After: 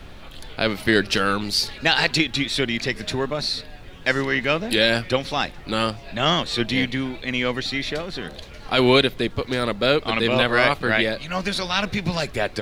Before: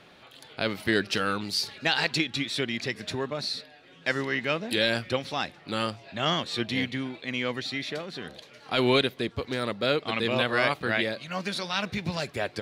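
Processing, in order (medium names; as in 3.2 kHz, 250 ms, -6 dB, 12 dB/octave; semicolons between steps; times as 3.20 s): added noise brown -46 dBFS; trim +6.5 dB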